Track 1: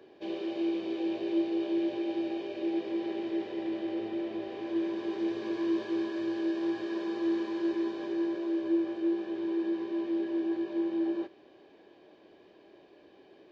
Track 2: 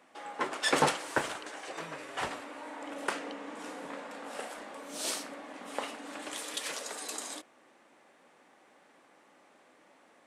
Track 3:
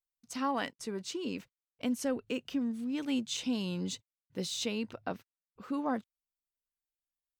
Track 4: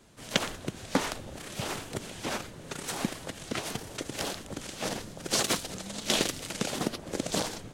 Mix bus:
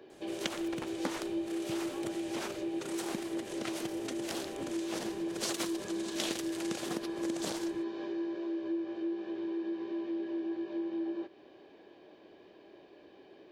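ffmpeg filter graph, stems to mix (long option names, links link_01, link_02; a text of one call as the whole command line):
ffmpeg -i stem1.wav -i stem2.wav -i stem3.wav -i stem4.wav -filter_complex "[0:a]volume=1dB[link_01];[1:a]acrusher=bits=2:mix=0:aa=0.5,volume=-10dB[link_02];[2:a]adelay=1500,volume=-14.5dB[link_03];[3:a]lowshelf=frequency=100:gain=-10.5,adelay=100,volume=-0.5dB[link_04];[link_01][link_02][link_03][link_04]amix=inputs=4:normalize=0,acompressor=threshold=-38dB:ratio=2" out.wav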